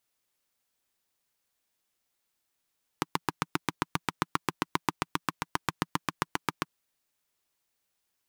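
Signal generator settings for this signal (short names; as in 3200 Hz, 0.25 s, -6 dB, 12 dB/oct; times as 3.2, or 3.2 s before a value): single-cylinder engine model, steady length 3.63 s, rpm 900, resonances 170/300/1000 Hz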